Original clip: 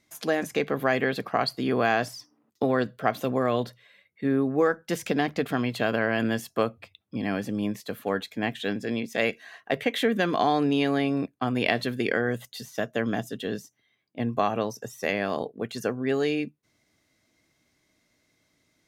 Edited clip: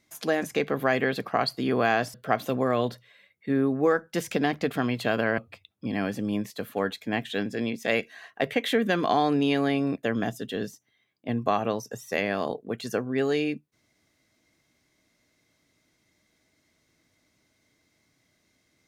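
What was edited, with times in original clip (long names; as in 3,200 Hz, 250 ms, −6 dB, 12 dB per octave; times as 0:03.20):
0:02.14–0:02.89: remove
0:06.13–0:06.68: remove
0:11.33–0:12.94: remove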